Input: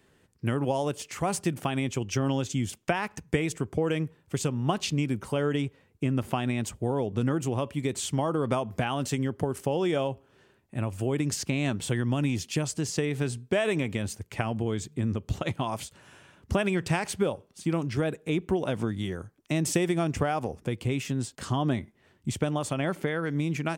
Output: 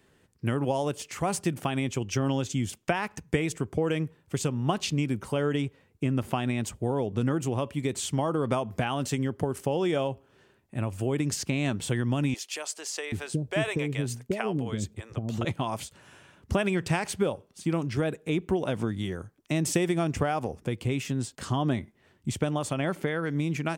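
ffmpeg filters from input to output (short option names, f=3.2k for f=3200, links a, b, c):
-filter_complex "[0:a]asettb=1/sr,asplit=3[a][b][c];[a]atrim=end=12.344[d];[b]atrim=start=12.34:end=15.45,asetpts=PTS-STARTPTS,afade=t=in:d=0.004:c=qsin,afade=t=out:st=3.106:d=0.004:c=qsin,acrossover=split=490[e][f];[e]adelay=780[g];[g][f]amix=inputs=2:normalize=0,atrim=end_sample=137151[h];[c]atrim=start=15.446[i];[d][h]acrossfade=d=0.004:c1=hsin:c2=qsin[j];[j][i]acrossfade=d=0.004:c1=qsin:c2=hsin"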